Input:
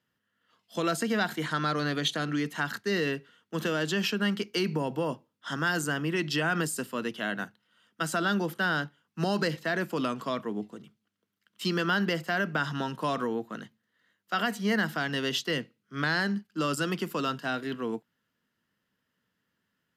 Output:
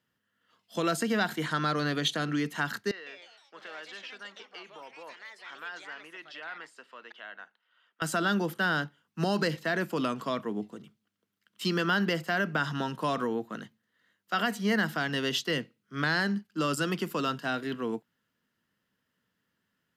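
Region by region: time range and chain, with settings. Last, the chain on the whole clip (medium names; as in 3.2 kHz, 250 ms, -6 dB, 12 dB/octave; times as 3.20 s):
2.91–8.02 s: compression 1.5:1, threshold -55 dBFS + band-pass 720–3100 Hz + ever faster or slower copies 155 ms, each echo +4 st, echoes 3, each echo -6 dB
whole clip: none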